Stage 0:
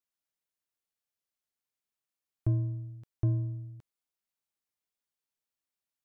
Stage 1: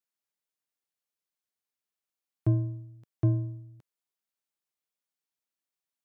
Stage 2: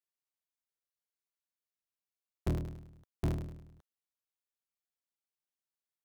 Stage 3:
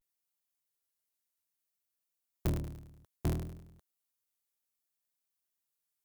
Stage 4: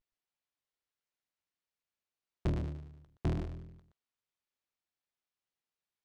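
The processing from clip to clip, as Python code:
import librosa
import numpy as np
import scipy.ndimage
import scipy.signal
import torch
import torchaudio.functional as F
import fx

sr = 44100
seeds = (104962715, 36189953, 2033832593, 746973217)

y1 = scipy.signal.sosfilt(scipy.signal.butter(2, 130.0, 'highpass', fs=sr, output='sos'), x)
y1 = fx.upward_expand(y1, sr, threshold_db=-45.0, expansion=1.5)
y1 = F.gain(torch.from_numpy(y1), 7.5).numpy()
y2 = fx.cycle_switch(y1, sr, every=3, mode='inverted')
y2 = F.gain(torch.from_numpy(y2), -7.5).numpy()
y3 = fx.high_shelf(y2, sr, hz=7100.0, db=11.5)
y3 = fx.vibrato(y3, sr, rate_hz=0.62, depth_cents=92.0)
y4 = scipy.signal.sosfilt(scipy.signal.butter(2, 3900.0, 'lowpass', fs=sr, output='sos'), y3)
y4 = y4 + 10.0 ** (-8.0 / 20.0) * np.pad(y4, (int(121 * sr / 1000.0), 0))[:len(y4)]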